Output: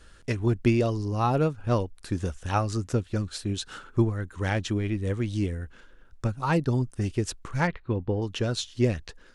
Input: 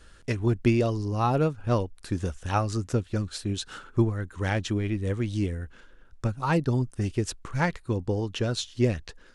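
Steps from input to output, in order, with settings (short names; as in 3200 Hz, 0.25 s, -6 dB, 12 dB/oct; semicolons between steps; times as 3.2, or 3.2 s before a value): 7.67–8.22 LPF 3300 Hz 24 dB/oct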